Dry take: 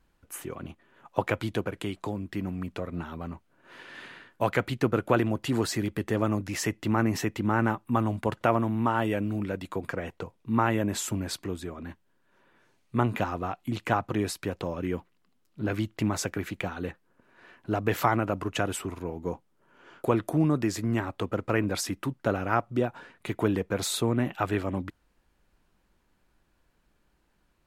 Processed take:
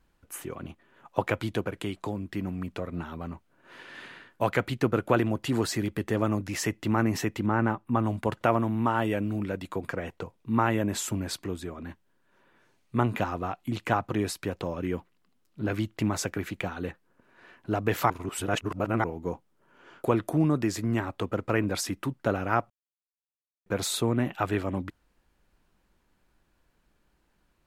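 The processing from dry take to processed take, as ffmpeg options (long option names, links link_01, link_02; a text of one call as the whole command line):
ffmpeg -i in.wav -filter_complex "[0:a]asettb=1/sr,asplit=3[link_01][link_02][link_03];[link_01]atrim=end=7.464[link_04];[link_02]atrim=start=7.46:end=8.04,asetpts=PTS-STARTPTS,afade=type=in:duration=0.004:curve=qsin,afade=type=out:start_time=0.576:duration=0.004:curve=qsin,highshelf=frequency=3600:gain=-10[link_05];[link_03]atrim=start=8.036[link_06];[link_04][link_05]acrossfade=duration=0.004:curve1=hsin:curve2=qsin[link_07];[link_07][link_06]acrossfade=duration=0.004:curve1=qsin:curve2=hsin,asplit=5[link_08][link_09][link_10][link_11][link_12];[link_08]atrim=end=18.102[link_13];[link_09]atrim=start=18.098:end=19.042,asetpts=PTS-STARTPTS,areverse[link_14];[link_10]atrim=start=19.038:end=22.7,asetpts=PTS-STARTPTS,afade=type=out:start_time=3.658:duration=0.004:curve=hsin[link_15];[link_11]atrim=start=22.7:end=23.66,asetpts=PTS-STARTPTS,volume=0[link_16];[link_12]atrim=start=23.66,asetpts=PTS-STARTPTS,afade=type=in:duration=0.004:curve=hsin[link_17];[link_13][link_14]acrossfade=duration=0.004:curve1=hsin:curve2=hsin[link_18];[link_15][link_16][link_17]concat=n=3:v=0:a=1[link_19];[link_18][link_19]acrossfade=duration=0.004:curve1=hsin:curve2=hsin" out.wav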